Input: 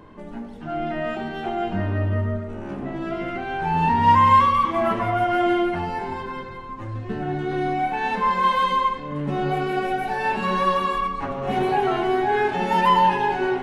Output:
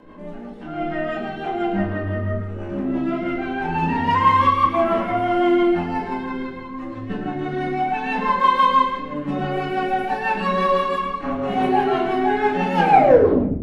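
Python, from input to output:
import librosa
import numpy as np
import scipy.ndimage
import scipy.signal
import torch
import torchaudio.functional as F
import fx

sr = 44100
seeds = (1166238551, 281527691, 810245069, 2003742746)

p1 = fx.tape_stop_end(x, sr, length_s=0.89)
p2 = fx.high_shelf(p1, sr, hz=4300.0, db=-6.5)
p3 = fx.rotary(p2, sr, hz=6.0)
p4 = fx.low_shelf(p3, sr, hz=130.0, db=-12.0)
p5 = p4 + fx.echo_single(p4, sr, ms=104, db=-10.0, dry=0)
p6 = fx.room_shoebox(p5, sr, seeds[0], volume_m3=240.0, walls='furnished', distance_m=2.1)
y = F.gain(torch.from_numpy(p6), 1.5).numpy()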